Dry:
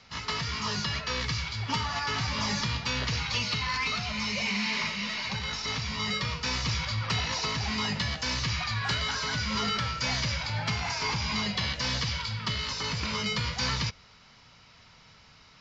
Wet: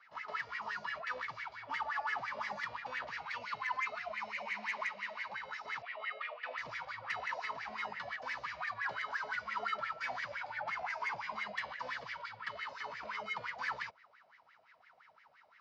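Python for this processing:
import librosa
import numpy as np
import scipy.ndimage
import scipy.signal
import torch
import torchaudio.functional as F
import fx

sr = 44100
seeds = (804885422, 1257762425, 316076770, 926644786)

y = fx.wah_lfo(x, sr, hz=5.8, low_hz=590.0, high_hz=2000.0, q=9.6)
y = 10.0 ** (-32.5 / 20.0) * np.tanh(y / 10.0 ** (-32.5 / 20.0))
y = fx.cabinet(y, sr, low_hz=340.0, low_slope=24, high_hz=3600.0, hz=(410.0, 660.0, 970.0, 1500.0, 2700.0), db=(-4, 8, -8, -4, 5), at=(5.82, 6.58))
y = y * 10.0 ** (6.5 / 20.0)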